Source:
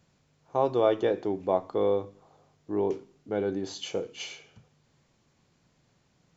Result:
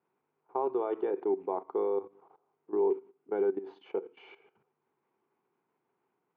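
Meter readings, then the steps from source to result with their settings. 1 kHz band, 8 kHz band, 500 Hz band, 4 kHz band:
-4.5 dB, no reading, -3.5 dB, under -20 dB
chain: level held to a coarse grid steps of 15 dB; cabinet simulation 370–2100 Hz, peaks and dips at 390 Hz +10 dB, 580 Hz -10 dB, 900 Hz +6 dB, 1.8 kHz -7 dB

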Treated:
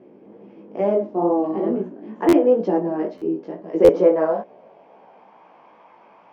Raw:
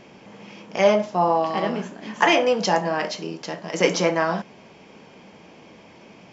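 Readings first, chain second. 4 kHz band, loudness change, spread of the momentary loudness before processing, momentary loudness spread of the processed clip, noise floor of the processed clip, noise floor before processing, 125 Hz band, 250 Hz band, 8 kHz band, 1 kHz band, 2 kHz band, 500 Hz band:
under -15 dB, +2.0 dB, 13 LU, 12 LU, -51 dBFS, -49 dBFS, -3.0 dB, +6.5 dB, no reading, -5.5 dB, -14.0 dB, +4.0 dB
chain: band-pass sweep 350 Hz -> 970 Hz, 3.52–5.49 s; dynamic bell 310 Hz, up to +5 dB, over -37 dBFS, Q 1; chorus 2.2 Hz, delay 15.5 ms, depth 4.6 ms; treble shelf 6.4 kHz -11.5 dB; buffer glitch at 2.28/3.17/3.84 s, samples 512, times 3; trim +9 dB

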